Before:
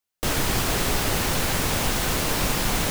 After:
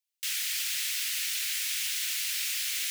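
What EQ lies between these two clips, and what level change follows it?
inverse Chebyshev high-pass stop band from 810 Hz, stop band 50 dB; -3.0 dB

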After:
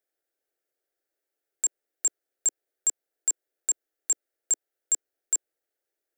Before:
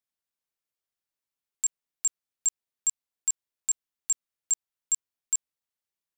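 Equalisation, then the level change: high-order bell 720 Hz +15.5 dB 3 oct; treble shelf 10 kHz +5.5 dB; static phaser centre 430 Hz, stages 4; 0.0 dB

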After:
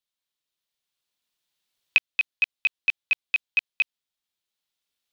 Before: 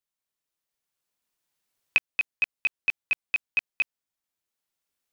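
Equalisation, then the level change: peaking EQ 3.6 kHz +10 dB 1 oct; -2.5 dB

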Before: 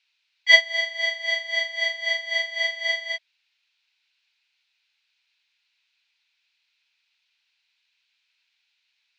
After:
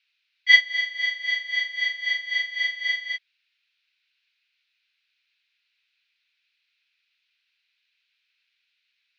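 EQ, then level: high-pass 1.3 kHz 24 dB/octave; distance through air 130 m; +1.5 dB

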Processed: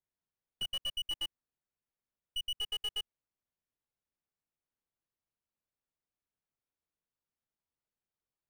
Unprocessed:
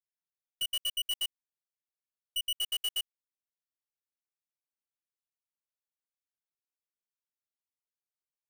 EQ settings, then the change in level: low-pass 1.3 kHz 6 dB/octave; bass shelf 240 Hz +7 dB; +4.5 dB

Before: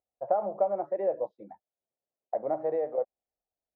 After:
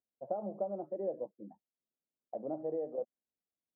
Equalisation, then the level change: band-pass filter 230 Hz, Q 1.7; distance through air 490 m; +3.5 dB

